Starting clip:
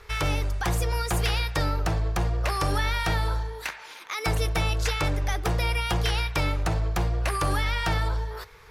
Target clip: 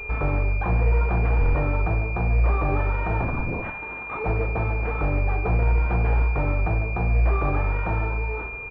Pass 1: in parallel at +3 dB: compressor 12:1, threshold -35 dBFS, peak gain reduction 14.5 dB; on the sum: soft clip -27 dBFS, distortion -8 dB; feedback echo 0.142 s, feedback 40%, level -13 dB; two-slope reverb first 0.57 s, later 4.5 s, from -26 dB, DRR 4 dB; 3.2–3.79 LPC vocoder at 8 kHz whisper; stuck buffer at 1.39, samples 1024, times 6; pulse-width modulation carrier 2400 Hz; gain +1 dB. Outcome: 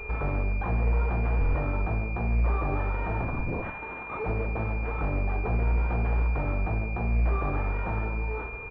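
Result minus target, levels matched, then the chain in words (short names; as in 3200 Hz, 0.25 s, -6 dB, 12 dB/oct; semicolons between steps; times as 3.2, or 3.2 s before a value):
soft clip: distortion +9 dB
in parallel at +3 dB: compressor 12:1, threshold -35 dBFS, peak gain reduction 14.5 dB; on the sum: soft clip -18 dBFS, distortion -17 dB; feedback echo 0.142 s, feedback 40%, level -13 dB; two-slope reverb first 0.57 s, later 4.5 s, from -26 dB, DRR 4 dB; 3.2–3.79 LPC vocoder at 8 kHz whisper; stuck buffer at 1.39, samples 1024, times 6; pulse-width modulation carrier 2400 Hz; gain +1 dB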